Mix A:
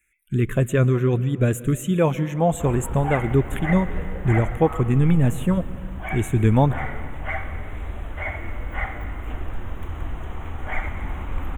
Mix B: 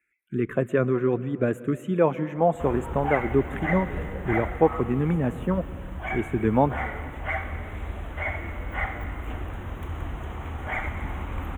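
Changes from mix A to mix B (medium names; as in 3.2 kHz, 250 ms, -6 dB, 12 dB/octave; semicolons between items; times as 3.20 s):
speech: add three-band isolator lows -15 dB, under 200 Hz, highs -19 dB, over 2.2 kHz; master: add high-pass 48 Hz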